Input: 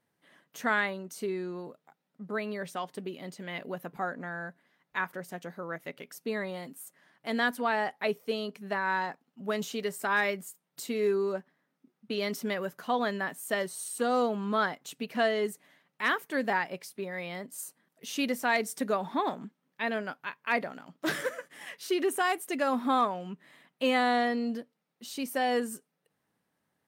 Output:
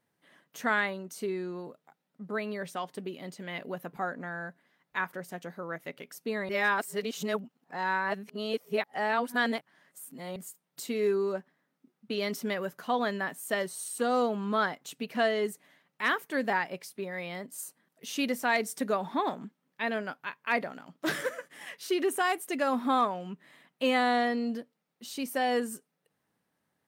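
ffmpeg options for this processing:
ffmpeg -i in.wav -filter_complex "[0:a]asplit=3[link_01][link_02][link_03];[link_01]atrim=end=6.492[link_04];[link_02]atrim=start=6.488:end=10.362,asetpts=PTS-STARTPTS,areverse[link_05];[link_03]atrim=start=10.358[link_06];[link_04][link_05]acrossfade=duration=0.004:curve1=hsin:curve2=hsin[link_07];[link_07][link_06]acrossfade=duration=0.004:curve1=hsin:curve2=hsin" out.wav

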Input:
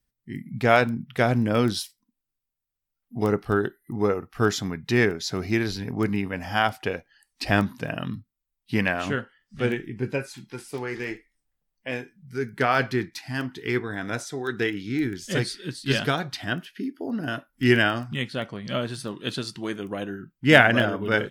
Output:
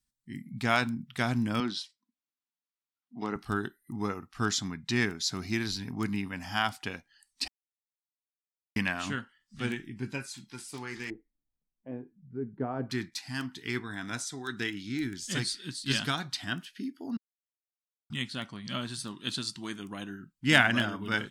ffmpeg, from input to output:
ffmpeg -i in.wav -filter_complex "[0:a]asettb=1/sr,asplit=3[link_01][link_02][link_03];[link_01]atrim=end=1.604[link_04];[link_02]atrim=start=1.6:end=3.36,asetpts=PTS-STARTPTS,afade=type=in:duration=0.004:curve=qsin,afade=type=out:start_time=1.756:duration=0.004:curve=qsin,highpass=240,lowpass=3500[link_05];[link_03]atrim=start=3.356[link_06];[link_04][link_05]acrossfade=duration=0.004:curve1=hsin:curve2=qsin[link_07];[link_07][link_06]acrossfade=duration=0.004:curve1=qsin:curve2=hsin,asettb=1/sr,asplit=3[link_08][link_09][link_10];[link_08]atrim=end=4.304[link_11];[link_09]atrim=start=4.3:end=5,asetpts=PTS-STARTPTS,afade=type=in:duration=0.004:curve=qsin,afade=type=out:start_time=0.696:duration=0.004:curve=qsin,lowpass=9800[link_12];[link_10]atrim=start=4.996[link_13];[link_11][link_12]acrossfade=duration=0.004:curve1=hsin:curve2=qsin[link_14];[link_14][link_13]acrossfade=duration=0.004:curve1=qsin:curve2=hsin,asettb=1/sr,asplit=3[link_15][link_16][link_17];[link_15]atrim=end=11.104[link_18];[link_16]atrim=start=11.1:end=12.9,asetpts=PTS-STARTPTS,afade=type=in:duration=0.004:curve=qsin,afade=type=out:start_time=1.796:duration=0.004:curve=qsin,lowpass=frequency=500:width_type=q:width=1.9[link_19];[link_17]atrim=start=12.896[link_20];[link_18][link_19]acrossfade=duration=0.004:curve1=hsin:curve2=qsin[link_21];[link_21][link_20]acrossfade=duration=0.004:curve1=qsin:curve2=hsin,asplit=5[link_22][link_23][link_24][link_25][link_26];[link_22]atrim=end=7.48,asetpts=PTS-STARTPTS,afade=type=out:start_time=7.476:duration=0.004:curve=hsin[link_27];[link_23]atrim=start=7.48:end=8.76,asetpts=PTS-STARTPTS,volume=0[link_28];[link_24]atrim=start=8.76:end=17.17,asetpts=PTS-STARTPTS,afade=type=in:duration=0.004:curve=hsin,afade=type=out:start_time=8.406:duration=0.004:curve=hsin[link_29];[link_25]atrim=start=17.17:end=18.1,asetpts=PTS-STARTPTS,volume=0[link_30];[link_26]atrim=start=18.1,asetpts=PTS-STARTPTS,afade=type=in:duration=0.004:curve=hsin[link_31];[link_27][link_28][link_29][link_30][link_31]concat=n=5:v=0:a=1,equalizer=frequency=250:width_type=o:width=1:gain=5,equalizer=frequency=500:width_type=o:width=1:gain=-11,equalizer=frequency=1000:width_type=o:width=1:gain=5,equalizer=frequency=4000:width_type=o:width=1:gain=6,equalizer=frequency=8000:width_type=o:width=1:gain=10,volume=-8dB" out.wav

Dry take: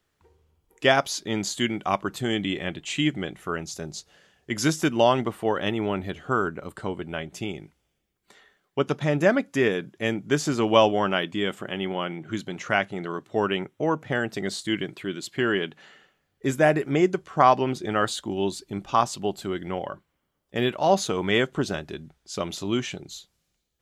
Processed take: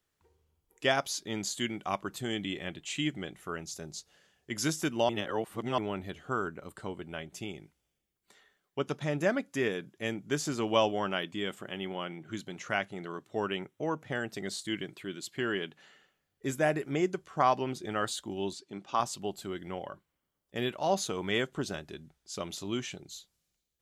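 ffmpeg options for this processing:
ffmpeg -i in.wav -filter_complex "[0:a]asettb=1/sr,asplit=3[link_01][link_02][link_03];[link_01]atrim=end=18.534[link_04];[link_02]atrim=start=18.53:end=19,asetpts=PTS-STARTPTS,afade=type=in:duration=0.004:curve=qsin,afade=type=out:start_time=0.466:duration=0.004:curve=qsin,highpass=190,lowpass=6200[link_05];[link_03]atrim=start=18.996[link_06];[link_04][link_05]acrossfade=duration=0.004:curve1=hsin:curve2=qsin[link_07];[link_07][link_06]acrossfade=duration=0.004:curve1=qsin:curve2=hsin,asplit=3[link_08][link_09][link_10];[link_08]atrim=end=5.092[link_11];[link_09]atrim=start=5.088:end=5.782,asetpts=PTS-STARTPTS,areverse[link_12];[link_10]atrim=start=5.778[link_13];[link_11][link_12]acrossfade=duration=0.004:curve1=hsin:curve2=hsin[link_14];[link_14][link_13]acrossfade=duration=0.004:curve1=hsin:curve2=hsin,highshelf=frequency=4900:gain=6.5,volume=-8.5dB" out.wav

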